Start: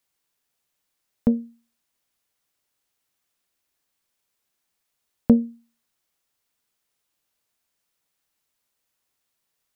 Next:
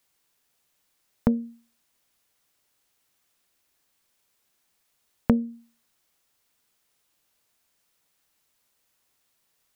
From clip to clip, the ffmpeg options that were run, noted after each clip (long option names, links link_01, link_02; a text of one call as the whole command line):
ffmpeg -i in.wav -af "acompressor=threshold=-26dB:ratio=3,volume=5.5dB" out.wav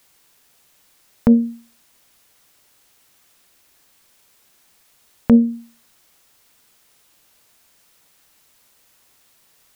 ffmpeg -i in.wav -af "alimiter=level_in=15.5dB:limit=-1dB:release=50:level=0:latency=1,volume=-1dB" out.wav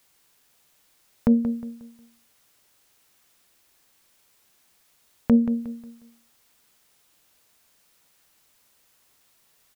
ffmpeg -i in.wav -af "aecho=1:1:180|360|540|720:0.282|0.0958|0.0326|0.0111,volume=-6dB" out.wav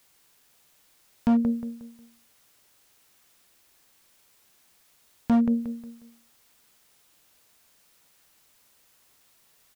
ffmpeg -i in.wav -af "asoftclip=type=hard:threshold=-18dB,volume=1dB" out.wav